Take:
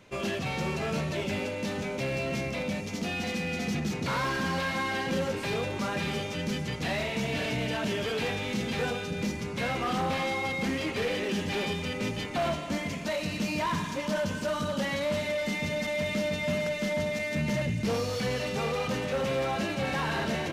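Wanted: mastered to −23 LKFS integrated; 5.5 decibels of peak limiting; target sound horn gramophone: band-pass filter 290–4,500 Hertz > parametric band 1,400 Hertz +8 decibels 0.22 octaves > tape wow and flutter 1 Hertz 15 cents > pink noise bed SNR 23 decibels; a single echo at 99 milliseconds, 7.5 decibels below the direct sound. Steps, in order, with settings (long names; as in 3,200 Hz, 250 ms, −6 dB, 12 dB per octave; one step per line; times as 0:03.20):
brickwall limiter −25 dBFS
band-pass filter 290–4,500 Hz
parametric band 1,400 Hz +8 dB 0.22 octaves
single-tap delay 99 ms −7.5 dB
tape wow and flutter 1 Hz 15 cents
pink noise bed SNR 23 dB
level +9.5 dB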